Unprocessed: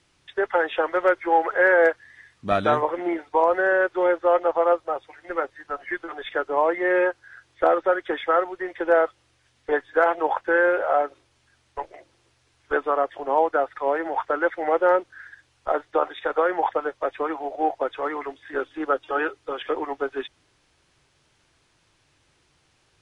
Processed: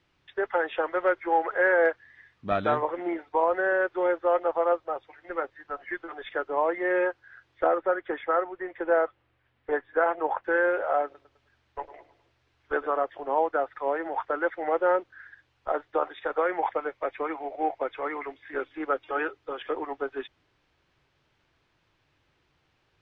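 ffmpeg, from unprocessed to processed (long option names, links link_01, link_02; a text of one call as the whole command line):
ffmpeg -i in.wav -filter_complex "[0:a]asettb=1/sr,asplit=3[link_01][link_02][link_03];[link_01]atrim=end=7.664[link_04];[link_02]atrim=start=7.66:end=10.44,asetpts=PTS-STARTPTS,afade=type=in:duration=0.004:curve=qsin,afade=type=out:start_time=2.776:duration=0.004:curve=qsin,lowpass=2600[link_05];[link_03]atrim=start=10.436[link_06];[link_04][link_05]acrossfade=duration=0.004:curve1=hsin:curve2=qsin[link_07];[link_07][link_06]acrossfade=duration=0.004:curve1=qsin:curve2=hsin,asettb=1/sr,asplit=3[link_08][link_09][link_10];[link_08]atrim=end=11.044[link_11];[link_09]atrim=start=11.04:end=13.05,asetpts=PTS-STARTPTS,afade=type=in:duration=0.004:curve=qsin,afade=type=out:start_time=2.006:duration=0.004:curve=qsin,aecho=1:1:104|208|312|416:0.168|0.0722|0.031|0.0133,atrim=end_sample=88641[link_12];[link_10]atrim=start=13.046[link_13];[link_11][link_12]acrossfade=duration=0.004:curve1=hsin:curve2=qsin[link_14];[link_14][link_13]acrossfade=duration=0.004:curve1=qsin:curve2=hsin,asettb=1/sr,asplit=3[link_15][link_16][link_17];[link_15]atrim=end=16.404[link_18];[link_16]atrim=start=16.4:end=19.23,asetpts=PTS-STARTPTS,afade=type=in:duration=0.004:curve=qsin,afade=type=out:start_time=2.826:duration=0.004:curve=qsin,equalizer=frequency=2200:width_type=o:width=0.26:gain=9.5[link_19];[link_17]atrim=start=19.226[link_20];[link_18][link_19]acrossfade=duration=0.004:curve1=hsin:curve2=qsin[link_21];[link_21][link_20]acrossfade=duration=0.004:curve1=qsin:curve2=hsin,lowpass=3500,volume=-4.5dB" out.wav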